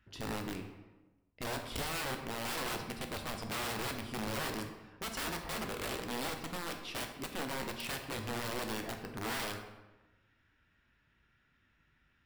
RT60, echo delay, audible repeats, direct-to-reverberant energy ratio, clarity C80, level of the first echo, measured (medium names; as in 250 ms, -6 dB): 1.1 s, no echo, no echo, 4.0 dB, 9.0 dB, no echo